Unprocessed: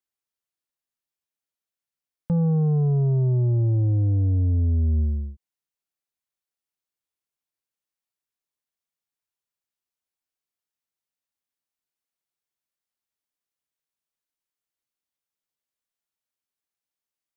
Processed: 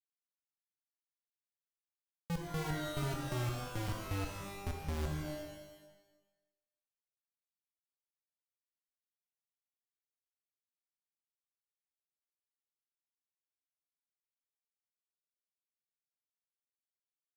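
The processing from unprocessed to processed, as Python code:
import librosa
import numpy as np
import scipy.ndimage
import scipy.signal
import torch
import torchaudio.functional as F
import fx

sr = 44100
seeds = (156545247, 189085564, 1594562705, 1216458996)

y = fx.highpass(x, sr, hz=260.0, slope=12, at=(2.42, 4.66), fade=0.02)
y = fx.dereverb_blind(y, sr, rt60_s=0.63)
y = fx.rider(y, sr, range_db=5, speed_s=2.0)
y = fx.step_gate(y, sr, bpm=172, pattern='..xx...xx', floor_db=-60.0, edge_ms=4.5)
y = fx.schmitt(y, sr, flips_db=-29.0)
y = fx.rev_shimmer(y, sr, seeds[0], rt60_s=1.0, semitones=12, shimmer_db=-2, drr_db=3.0)
y = y * librosa.db_to_amplitude(3.0)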